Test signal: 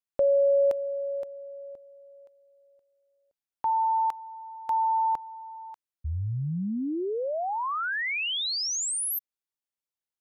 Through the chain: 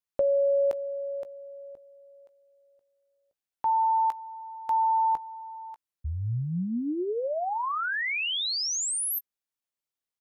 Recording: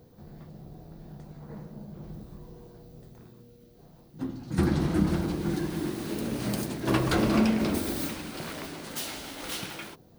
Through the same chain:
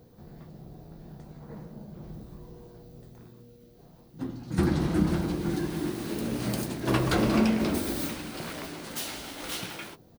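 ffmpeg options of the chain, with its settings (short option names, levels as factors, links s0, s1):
-filter_complex "[0:a]asplit=2[s0][s1];[s1]adelay=17,volume=0.211[s2];[s0][s2]amix=inputs=2:normalize=0"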